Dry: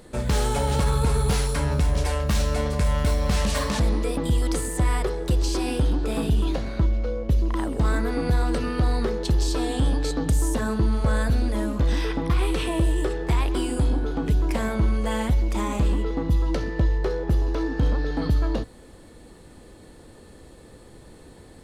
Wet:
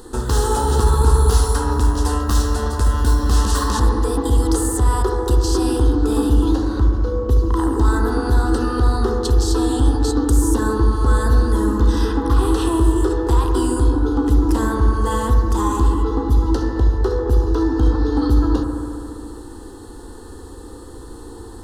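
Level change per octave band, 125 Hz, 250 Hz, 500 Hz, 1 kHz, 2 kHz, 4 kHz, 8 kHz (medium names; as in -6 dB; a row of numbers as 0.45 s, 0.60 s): +5.5 dB, +7.5 dB, +6.0 dB, +8.0 dB, +2.0 dB, +2.5 dB, +6.5 dB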